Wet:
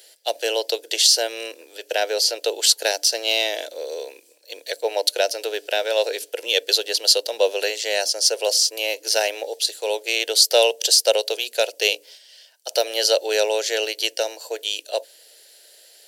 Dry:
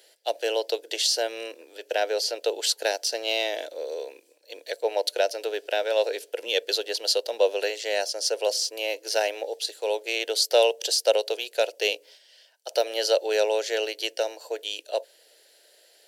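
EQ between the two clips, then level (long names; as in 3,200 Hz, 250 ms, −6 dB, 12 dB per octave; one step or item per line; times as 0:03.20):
high-shelf EQ 3,100 Hz +9 dB
mains-hum notches 60/120/180/240/300 Hz
+2.0 dB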